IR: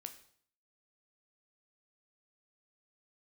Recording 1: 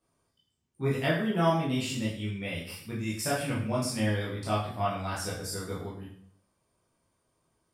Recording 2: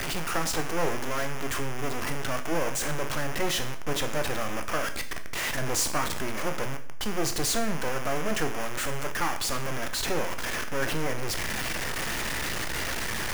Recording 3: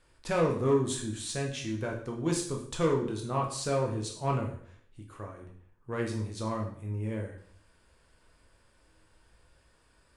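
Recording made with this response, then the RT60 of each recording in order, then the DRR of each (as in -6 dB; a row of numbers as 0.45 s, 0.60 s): 2; 0.60 s, 0.60 s, 0.60 s; -7.5 dB, 6.5 dB, 0.0 dB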